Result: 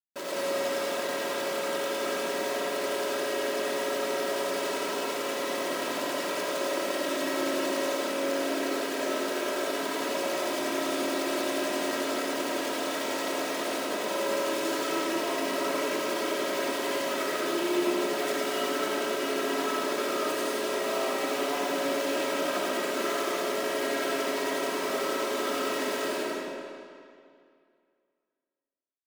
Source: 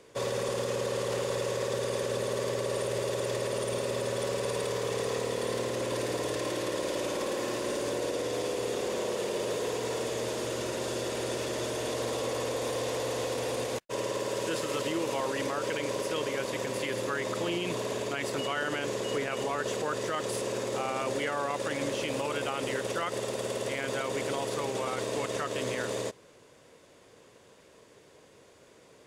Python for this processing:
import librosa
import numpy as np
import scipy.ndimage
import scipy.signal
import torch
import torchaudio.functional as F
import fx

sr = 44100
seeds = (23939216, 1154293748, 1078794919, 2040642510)

y = fx.echo_feedback(x, sr, ms=76, feedback_pct=29, wet_db=-5.5)
y = fx.chopper(y, sr, hz=11.0, depth_pct=60, duty_pct=50)
y = fx.schmitt(y, sr, flips_db=-44.0)
y = scipy.signal.sosfilt(scipy.signal.ellip(4, 1.0, 40, 160.0, 'highpass', fs=sr, output='sos'), y)
y = y + 0.64 * np.pad(y, (int(3.1 * sr / 1000.0), 0))[:len(y)]
y = fx.rev_freeverb(y, sr, rt60_s=2.3, hf_ratio=0.85, predelay_ms=45, drr_db=-5.5)
y = y * 10.0 ** (-3.0 / 20.0)